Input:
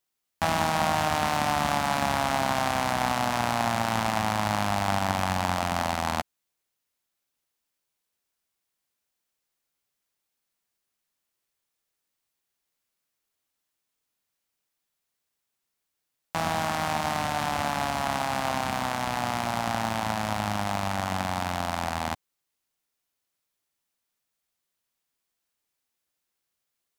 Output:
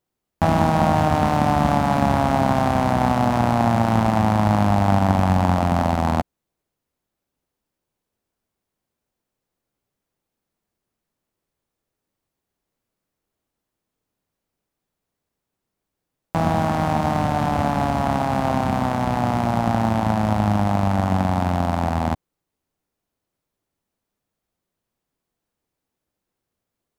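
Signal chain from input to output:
tilt shelving filter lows +9 dB
level +4.5 dB

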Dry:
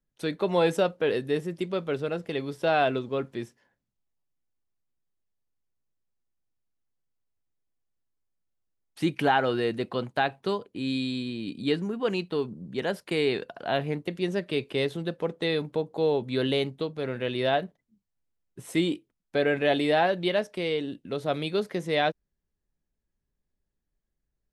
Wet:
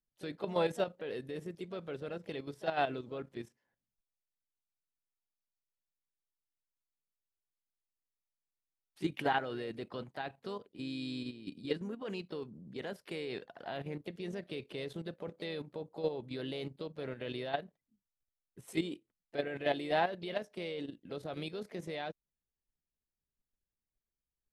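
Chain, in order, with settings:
output level in coarse steps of 11 dB
pitch-shifted copies added +3 semitones −13 dB
level −6.5 dB

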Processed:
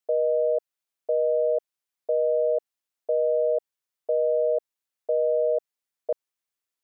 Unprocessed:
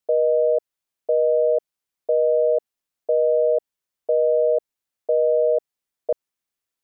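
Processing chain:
low-shelf EQ 340 Hz −7 dB
level −2.5 dB

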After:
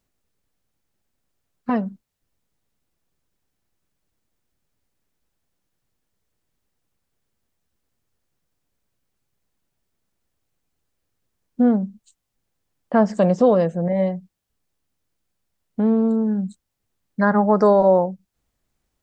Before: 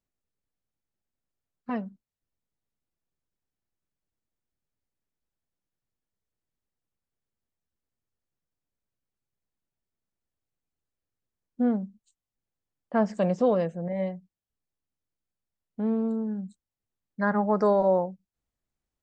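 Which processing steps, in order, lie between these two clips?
dynamic equaliser 2,400 Hz, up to −5 dB, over −50 dBFS, Q 1.8
in parallel at +1.5 dB: downward compressor, threshold −33 dBFS, peak gain reduction 14.5 dB
on the sum: level +5.5 dB

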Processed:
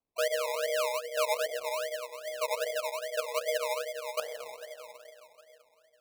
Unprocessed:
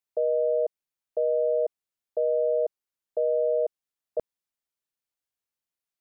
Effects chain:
time-frequency cells dropped at random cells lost 37%
high-pass filter 620 Hz 24 dB per octave
0:01.46–0:02.40: noise gate −27 dBFS, range −14 dB
rectangular room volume 160 cubic metres, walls hard, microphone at 0.49 metres
sample-and-hold swept by an LFO 23×, swing 60% 2.5 Hz

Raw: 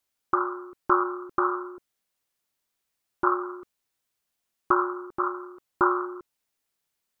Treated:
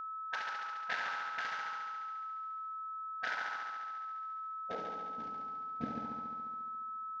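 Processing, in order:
variable-slope delta modulation 32 kbit/s
gate on every frequency bin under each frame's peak −20 dB weak
band-pass filter sweep 1,400 Hz → 240 Hz, 0:04.17–0:05.03
echo machine with several playback heads 70 ms, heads first and second, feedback 67%, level −8 dB
steady tone 1,300 Hz −48 dBFS
level +8.5 dB

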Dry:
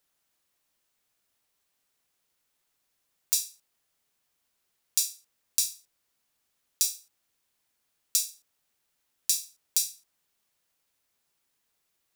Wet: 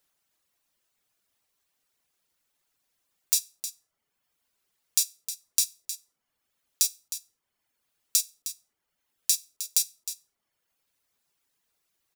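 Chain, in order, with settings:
reverb reduction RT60 1 s
single-tap delay 311 ms −11.5 dB
level +2 dB

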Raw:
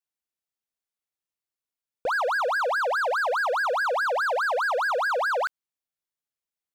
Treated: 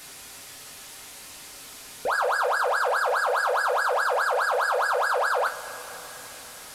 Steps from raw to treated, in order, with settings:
linear delta modulator 64 kbit/s, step −37 dBFS
coupled-rooms reverb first 0.21 s, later 4.6 s, from −22 dB, DRR 1 dB
level −1 dB

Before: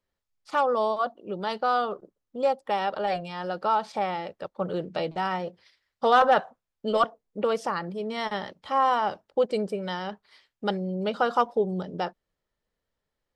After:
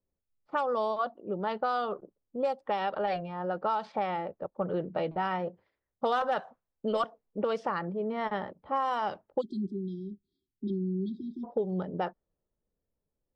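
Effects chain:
time-frequency box erased 0:09.41–0:11.44, 390–3,200 Hz
low-pass that shuts in the quiet parts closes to 390 Hz, open at −18.5 dBFS
downward compressor 5 to 1, threshold −26 dBFS, peak gain reduction 10.5 dB
one half of a high-frequency compander encoder only

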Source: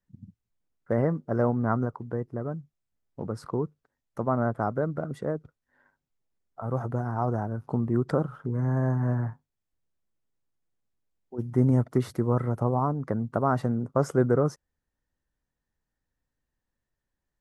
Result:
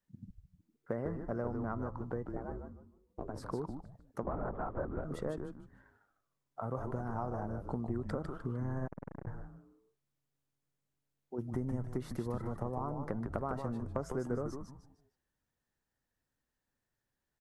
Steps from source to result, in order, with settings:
low-shelf EQ 90 Hz −9 dB
hum removal 331.3 Hz, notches 7
downward compressor 6 to 1, threshold −33 dBFS, peak gain reduction 15 dB
0:02.33–0:03.50: ring modulation 210 Hz
echo with shifted repeats 152 ms, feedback 33%, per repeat −140 Hz, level −5.5 dB
0:04.23–0:05.04: linear-prediction vocoder at 8 kHz whisper
0:08.87–0:09.27: saturating transformer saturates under 620 Hz
level −1 dB

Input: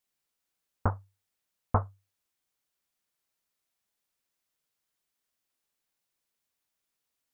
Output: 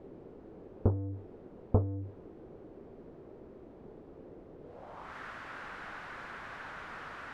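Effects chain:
converter with a step at zero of −31 dBFS
low-pass filter sweep 400 Hz → 1,500 Hz, 0:04.61–0:05.17
level −1 dB

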